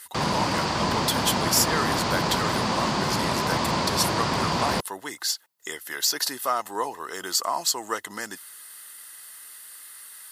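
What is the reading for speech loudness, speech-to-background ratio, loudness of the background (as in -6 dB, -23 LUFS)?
-28.0 LUFS, -3.0 dB, -25.0 LUFS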